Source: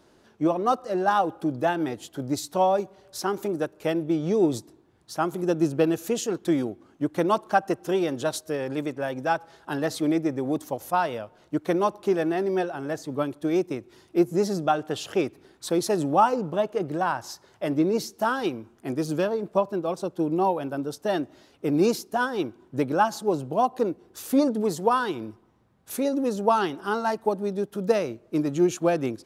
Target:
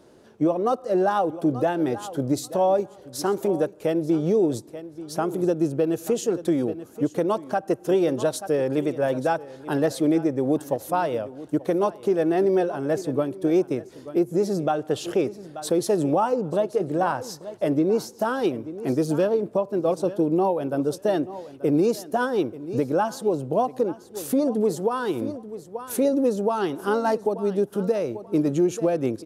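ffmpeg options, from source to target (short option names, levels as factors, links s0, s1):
-af "equalizer=f=125:t=o:w=1:g=5,equalizer=f=250:t=o:w=1:g=3,equalizer=f=500:t=o:w=1:g=8,aecho=1:1:883|1766:0.126|0.0201,alimiter=limit=0.224:level=0:latency=1:release=327,equalizer=f=9800:t=o:w=0.94:g=4.5"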